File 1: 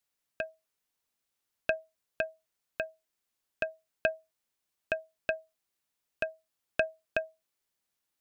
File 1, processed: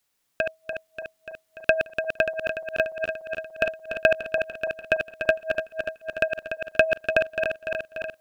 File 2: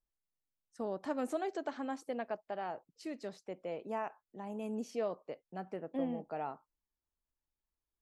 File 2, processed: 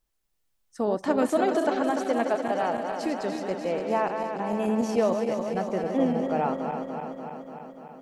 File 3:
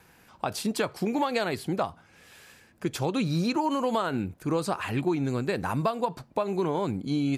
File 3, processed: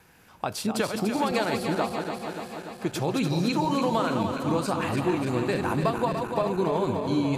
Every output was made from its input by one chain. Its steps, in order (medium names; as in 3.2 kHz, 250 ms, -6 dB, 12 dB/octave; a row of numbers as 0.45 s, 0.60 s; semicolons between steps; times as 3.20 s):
backward echo that repeats 146 ms, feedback 82%, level -6.5 dB; normalise loudness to -27 LUFS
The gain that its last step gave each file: +9.0 dB, +12.0 dB, 0.0 dB